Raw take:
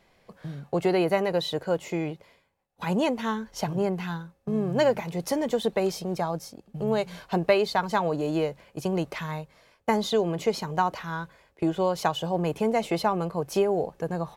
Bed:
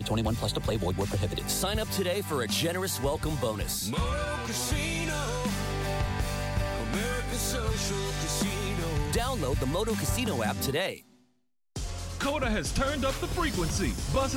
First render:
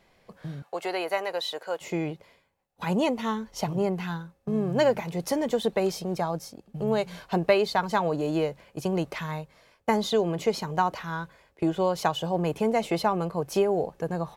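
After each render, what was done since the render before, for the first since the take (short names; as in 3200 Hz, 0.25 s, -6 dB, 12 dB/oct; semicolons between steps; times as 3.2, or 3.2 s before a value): 0.62–1.81 HPF 640 Hz; 2.94–3.95 notch 1600 Hz, Q 7.7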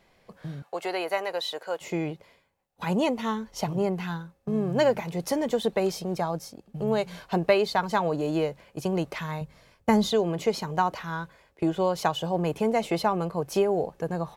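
9.41–10.12 tone controls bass +10 dB, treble +2 dB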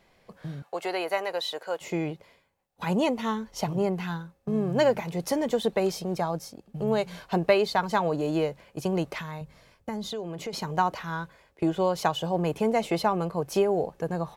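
9.21–10.53 compressor 2.5:1, threshold -35 dBFS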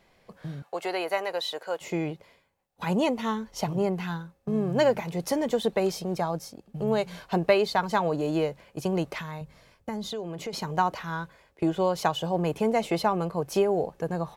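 nothing audible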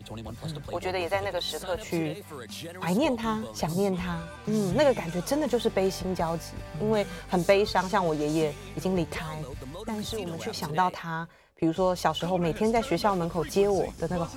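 add bed -11 dB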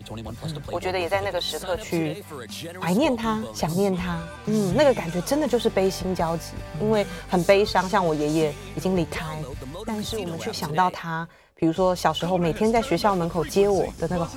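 gain +4 dB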